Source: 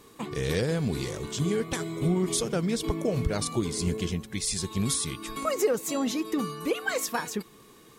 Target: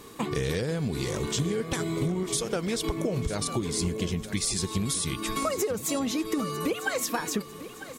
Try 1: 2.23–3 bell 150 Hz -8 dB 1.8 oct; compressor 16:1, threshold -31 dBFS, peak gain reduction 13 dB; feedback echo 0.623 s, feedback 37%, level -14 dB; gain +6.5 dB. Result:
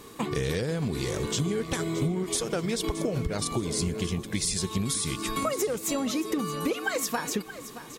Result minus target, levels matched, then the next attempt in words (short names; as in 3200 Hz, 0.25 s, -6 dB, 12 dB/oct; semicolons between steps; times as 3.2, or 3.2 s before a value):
echo 0.326 s early
2.23–3 bell 150 Hz -8 dB 1.8 oct; compressor 16:1, threshold -31 dBFS, peak gain reduction 13 dB; feedback echo 0.949 s, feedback 37%, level -14 dB; gain +6.5 dB